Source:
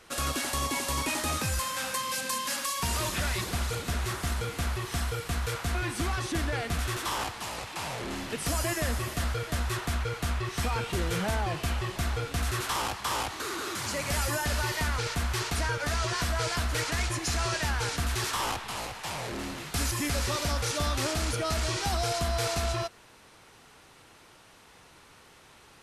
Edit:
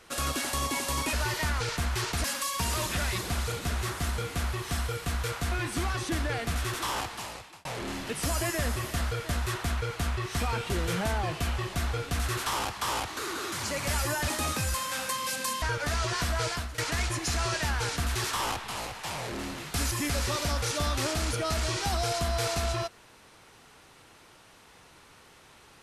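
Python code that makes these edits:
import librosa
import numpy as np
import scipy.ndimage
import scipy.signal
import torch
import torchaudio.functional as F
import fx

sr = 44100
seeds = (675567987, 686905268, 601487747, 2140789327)

y = fx.edit(x, sr, fx.swap(start_s=1.13, length_s=1.34, other_s=14.51, other_length_s=1.11),
    fx.fade_out_span(start_s=7.37, length_s=0.51),
    fx.fade_out_to(start_s=16.46, length_s=0.32, floor_db=-17.0), tone=tone)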